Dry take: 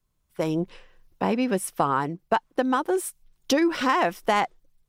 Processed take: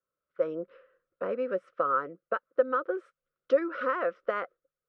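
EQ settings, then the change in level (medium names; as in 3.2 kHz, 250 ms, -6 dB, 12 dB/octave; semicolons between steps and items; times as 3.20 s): two resonant band-passes 840 Hz, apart 1.3 oct; distance through air 150 m; +4.0 dB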